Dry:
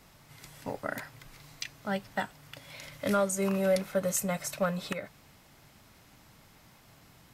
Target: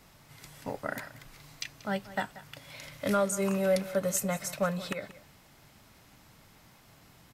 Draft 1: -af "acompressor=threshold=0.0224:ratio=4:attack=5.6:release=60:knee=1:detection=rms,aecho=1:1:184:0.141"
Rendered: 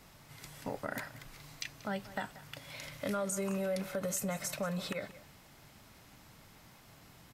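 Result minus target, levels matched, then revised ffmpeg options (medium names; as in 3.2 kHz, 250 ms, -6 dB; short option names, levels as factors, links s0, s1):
compression: peak gain reduction +9.5 dB
-af "aecho=1:1:184:0.141"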